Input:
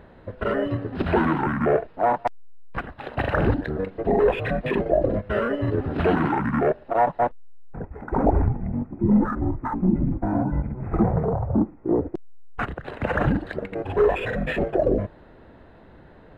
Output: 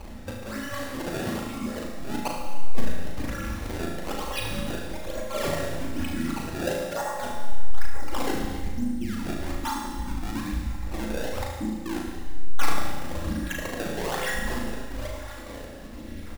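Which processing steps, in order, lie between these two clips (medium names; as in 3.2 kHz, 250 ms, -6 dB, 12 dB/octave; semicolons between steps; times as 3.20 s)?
random holes in the spectrogram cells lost 35%; treble shelf 2.2 kHz +10.5 dB; comb 3.6 ms, depth 79%; peak limiter -16 dBFS, peak gain reduction 10 dB; reverse; compression 6:1, threshold -35 dBFS, peak gain reduction 14.5 dB; reverse; phase shifter stages 2, 0.7 Hz, lowest notch 100–1000 Hz; decimation with a swept rate 24×, swing 160% 1.1 Hz; on a send: flutter echo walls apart 6.3 m, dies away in 0.44 s; on the sum: Schroeder reverb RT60 1.6 s, combs from 33 ms, DRR 1.5 dB; trim +6.5 dB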